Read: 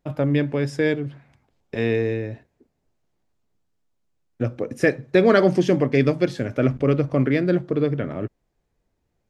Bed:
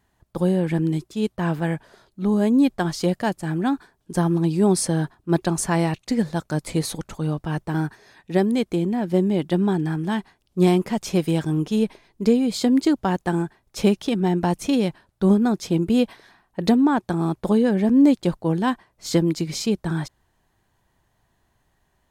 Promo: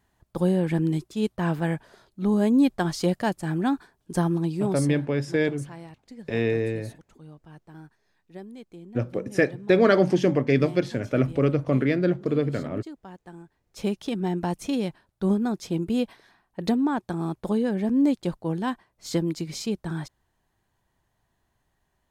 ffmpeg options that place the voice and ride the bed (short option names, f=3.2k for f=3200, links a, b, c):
-filter_complex "[0:a]adelay=4550,volume=-2.5dB[a];[1:a]volume=13.5dB,afade=t=out:st=4.13:d=0.9:silence=0.105925,afade=t=in:st=13.47:d=0.6:silence=0.16788[b];[a][b]amix=inputs=2:normalize=0"